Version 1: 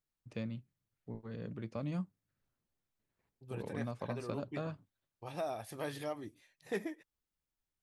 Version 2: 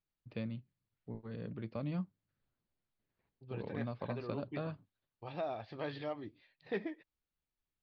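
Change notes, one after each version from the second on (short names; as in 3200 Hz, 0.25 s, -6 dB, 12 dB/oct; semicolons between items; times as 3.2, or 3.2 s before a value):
master: add Chebyshev low-pass 4600 Hz, order 5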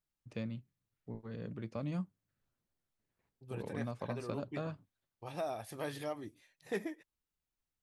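master: remove Chebyshev low-pass 4600 Hz, order 5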